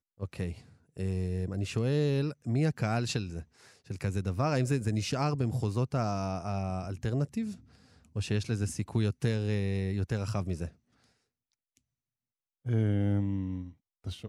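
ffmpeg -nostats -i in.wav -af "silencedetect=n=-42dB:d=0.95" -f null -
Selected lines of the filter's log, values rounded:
silence_start: 10.69
silence_end: 12.66 | silence_duration: 1.97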